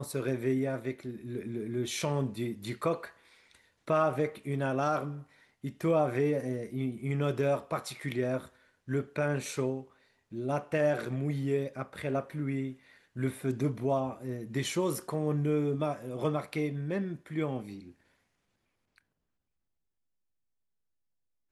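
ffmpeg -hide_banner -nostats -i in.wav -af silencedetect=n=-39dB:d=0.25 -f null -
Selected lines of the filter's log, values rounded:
silence_start: 3.07
silence_end: 3.88 | silence_duration: 0.80
silence_start: 5.20
silence_end: 5.64 | silence_duration: 0.44
silence_start: 8.45
silence_end: 8.88 | silence_duration: 0.44
silence_start: 9.82
silence_end: 10.33 | silence_duration: 0.51
silence_start: 12.73
silence_end: 13.16 | silence_duration: 0.44
silence_start: 17.79
silence_end: 21.51 | silence_duration: 3.72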